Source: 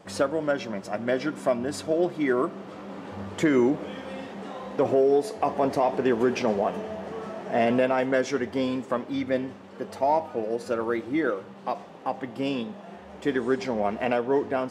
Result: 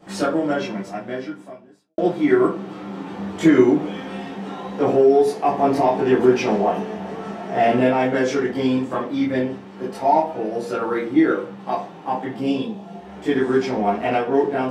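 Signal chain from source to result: 12.38–13.03 bell 1600 Hz -8 dB 1.3 oct; reverb RT60 0.30 s, pre-delay 15 ms, DRR -9 dB; 0.67–1.98 fade out quadratic; gain -4.5 dB

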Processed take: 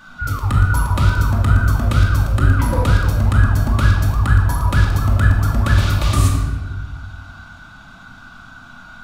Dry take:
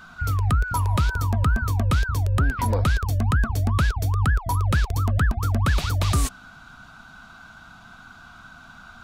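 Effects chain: shoebox room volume 1100 m³, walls mixed, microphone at 2.4 m

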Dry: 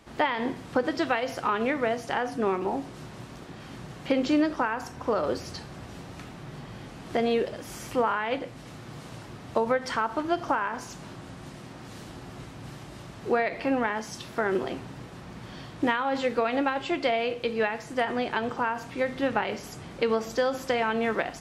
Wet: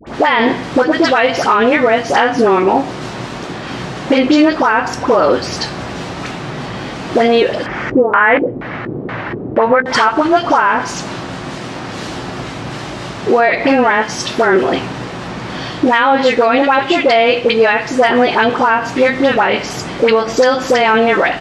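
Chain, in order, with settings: LPF 6400 Hz 12 dB/oct; low shelf 160 Hz -10.5 dB; compressor 2:1, threshold -29 dBFS, peak gain reduction 5.5 dB; dispersion highs, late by 72 ms, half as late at 1100 Hz; 7.66–9.86 LFO low-pass square 2.1 Hz 390–1900 Hz; doubler 16 ms -14 dB; maximiser +21.5 dB; gain -1 dB

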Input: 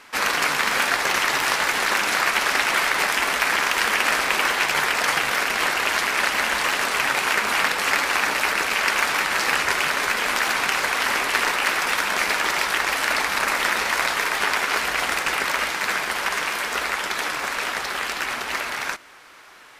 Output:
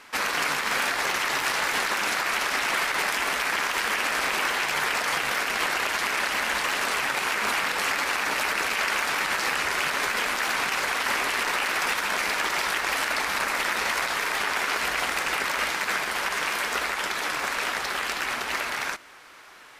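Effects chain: limiter -14 dBFS, peak gain reduction 8 dB; gain -1.5 dB

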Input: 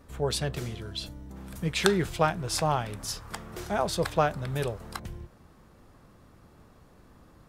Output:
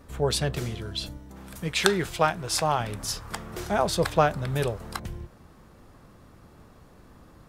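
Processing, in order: 1.17–2.8 low shelf 380 Hz -6.5 dB; gain +3.5 dB

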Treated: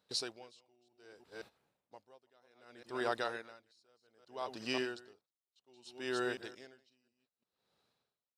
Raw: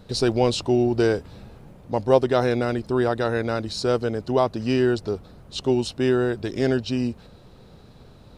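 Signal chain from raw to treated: reverse delay 0.177 s, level -9 dB; gate -34 dBFS, range -16 dB; HPF 1400 Hz 6 dB/oct; dB-linear tremolo 0.64 Hz, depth 38 dB; gain -3.5 dB

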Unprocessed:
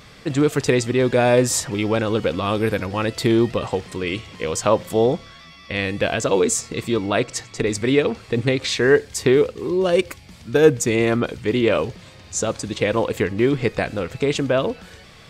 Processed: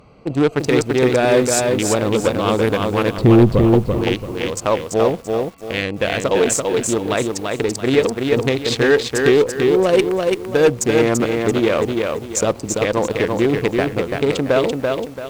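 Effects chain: Wiener smoothing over 25 samples; added harmonics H 2 -15 dB, 5 -18 dB, 7 -19 dB, 8 -27 dB, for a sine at -1.5 dBFS; low shelf 290 Hz -7 dB; in parallel at +2 dB: limiter -10.5 dBFS, peak gain reduction 8 dB; on the sum: AGC; 3.18–3.71 RIAA curve playback; soft clip -3.5 dBFS, distortion -15 dB; lo-fi delay 0.337 s, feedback 35%, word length 7-bit, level -3.5 dB; gain -1 dB

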